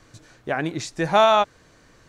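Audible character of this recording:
background noise floor −55 dBFS
spectral slope −3.0 dB per octave

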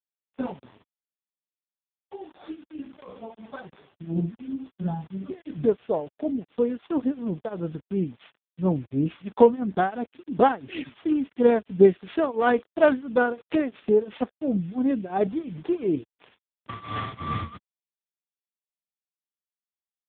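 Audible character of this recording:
a buzz of ramps at a fixed pitch in blocks of 8 samples
tremolo triangle 2.9 Hz, depth 95%
a quantiser's noise floor 8 bits, dither none
AMR narrowband

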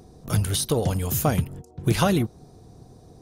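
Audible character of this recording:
background noise floor −51 dBFS
spectral slope −5.0 dB per octave

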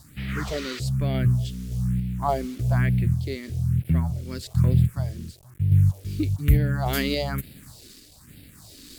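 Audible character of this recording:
a quantiser's noise floor 8 bits, dither none
sample-and-hold tremolo
phaser sweep stages 4, 1.1 Hz, lowest notch 120–1,100 Hz
Opus

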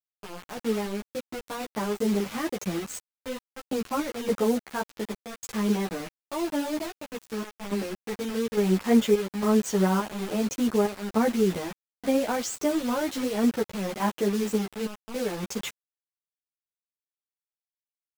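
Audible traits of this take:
sample-and-hold tremolo, depth 90%
a quantiser's noise floor 6 bits, dither none
a shimmering, thickened sound

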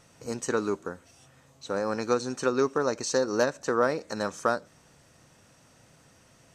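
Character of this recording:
background noise floor −59 dBFS
spectral slope −4.0 dB per octave

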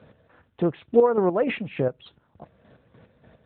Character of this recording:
chopped level 3.4 Hz, depth 60%, duty 40%
AMR narrowband

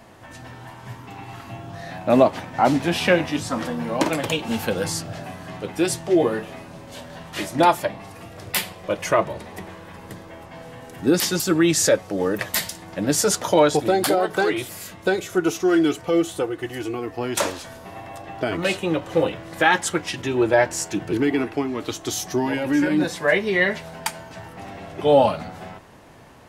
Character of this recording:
background noise floor −42 dBFS
spectral slope −4.0 dB per octave

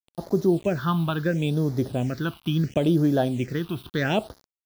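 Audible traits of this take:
a quantiser's noise floor 8 bits, dither none
phaser sweep stages 6, 0.73 Hz, lowest notch 490–2,700 Hz

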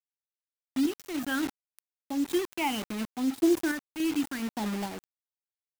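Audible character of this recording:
phaser sweep stages 8, 0.68 Hz, lowest notch 490–2,300 Hz
a quantiser's noise floor 6 bits, dither none
sample-and-hold tremolo

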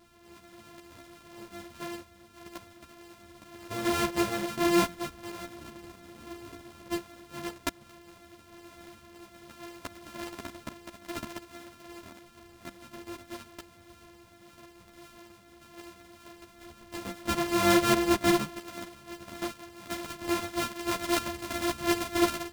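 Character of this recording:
a buzz of ramps at a fixed pitch in blocks of 128 samples
a shimmering, thickened sound

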